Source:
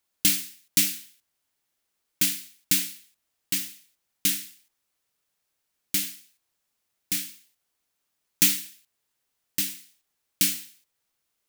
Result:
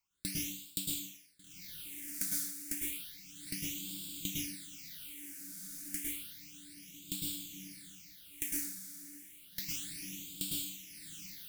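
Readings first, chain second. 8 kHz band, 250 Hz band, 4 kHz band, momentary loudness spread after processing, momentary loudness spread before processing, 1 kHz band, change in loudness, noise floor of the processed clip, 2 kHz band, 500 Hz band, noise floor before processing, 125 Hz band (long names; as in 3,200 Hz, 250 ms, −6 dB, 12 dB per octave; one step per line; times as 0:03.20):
−11.0 dB, −7.0 dB, −11.5 dB, 14 LU, 15 LU, below −10 dB, −14.0 dB, −57 dBFS, −12.5 dB, can't be measured, −79 dBFS, −6.0 dB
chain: rotating-speaker cabinet horn 1.2 Hz
feedback delay with all-pass diffusion 1,550 ms, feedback 55%, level −15 dB
downward compressor 3 to 1, threshold −37 dBFS, peak gain reduction 13.5 dB
dense smooth reverb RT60 0.52 s, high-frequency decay 0.9×, pre-delay 95 ms, DRR −2 dB
all-pass phaser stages 8, 0.31 Hz, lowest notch 110–1,900 Hz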